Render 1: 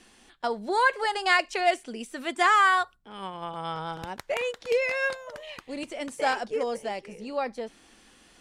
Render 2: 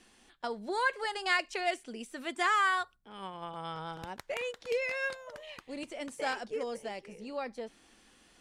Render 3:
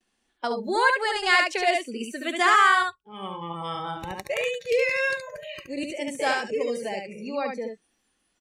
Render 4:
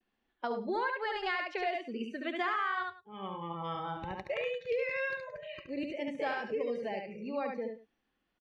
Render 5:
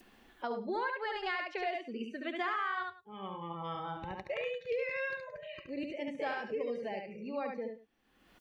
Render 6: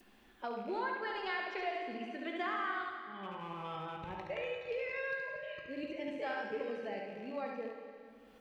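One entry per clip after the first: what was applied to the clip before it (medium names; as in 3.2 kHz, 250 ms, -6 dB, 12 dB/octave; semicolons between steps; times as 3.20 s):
dynamic bell 770 Hz, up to -4 dB, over -33 dBFS, Q 1.1; trim -5.5 dB
delay 71 ms -3.5 dB; gate with hold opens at -54 dBFS; spectral noise reduction 21 dB; trim +8 dB
compression 5:1, threshold -24 dBFS, peak gain reduction 9.5 dB; distance through air 270 m; delay 103 ms -16.5 dB; trim -4.5 dB
upward compressor, threshold -41 dBFS; trim -2 dB
rattle on loud lows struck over -49 dBFS, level -44 dBFS; feedback comb 54 Hz, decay 1.7 s, harmonics all, mix 70%; plate-style reverb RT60 2.5 s, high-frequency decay 0.85×, DRR 5 dB; trim +5.5 dB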